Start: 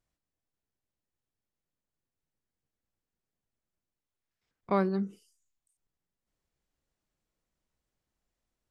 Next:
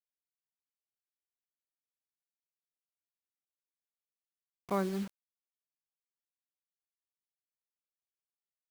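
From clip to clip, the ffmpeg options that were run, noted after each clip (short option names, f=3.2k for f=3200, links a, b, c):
-af "acrusher=bits=6:mix=0:aa=0.000001,volume=-5dB"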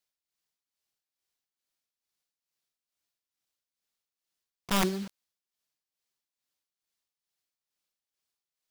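-af "equalizer=f=4.6k:t=o:w=1.3:g=5.5,tremolo=f=2.3:d=0.66,aeval=exprs='(mod(21.1*val(0)+1,2)-1)/21.1':c=same,volume=8.5dB"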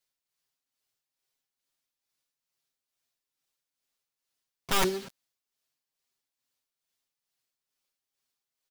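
-af "aecho=1:1:7.5:0.82"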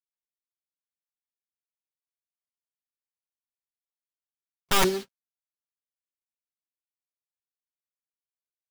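-af "agate=range=-37dB:threshold=-36dB:ratio=16:detection=peak,volume=4dB"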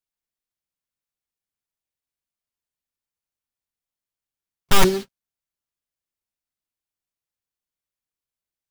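-af "lowshelf=f=160:g=10,volume=3.5dB"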